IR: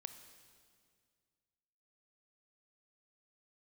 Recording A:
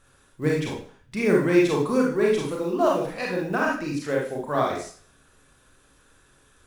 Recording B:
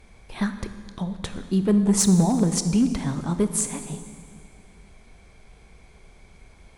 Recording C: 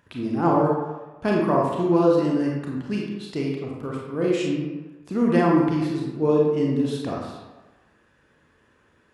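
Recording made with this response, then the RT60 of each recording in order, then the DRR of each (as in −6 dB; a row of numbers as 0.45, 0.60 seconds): B; 0.45, 2.1, 1.2 seconds; −3.0, 8.5, −2.5 decibels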